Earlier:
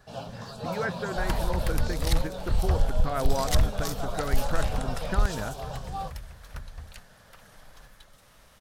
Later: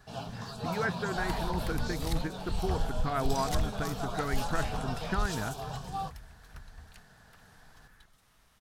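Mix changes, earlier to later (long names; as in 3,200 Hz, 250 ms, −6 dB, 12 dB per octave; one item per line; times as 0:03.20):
second sound −8.5 dB
master: add parametric band 550 Hz −13 dB 0.23 octaves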